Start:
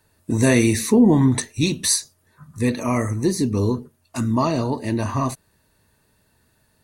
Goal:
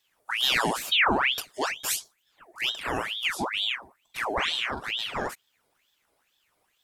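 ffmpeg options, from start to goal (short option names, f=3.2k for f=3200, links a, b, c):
-filter_complex "[0:a]asettb=1/sr,asplit=3[a][b][c];[a]atrim=end=3.784[d];[b]atrim=start=3.78:end=4.81,asetpts=PTS-STARTPTS,afade=t=in:d=0.004:c=qsin,afade=t=out:st=1.026:d=0.004:c=qsin,asplit=2[e][f];[f]adelay=43,volume=-5.5dB[g];[e][g]amix=inputs=2:normalize=0,atrim=end_sample=45423[h];[c]atrim=start=4.806[i];[d][h]acrossfade=d=0.004:c1=hsin:c2=qsin[j];[j][i]acrossfade=d=0.004:c1=qsin:c2=hsin,aeval=exprs='val(0)*sin(2*PI*2000*n/s+2000*0.75/2.2*sin(2*PI*2.2*n/s))':c=same,volume=-6dB"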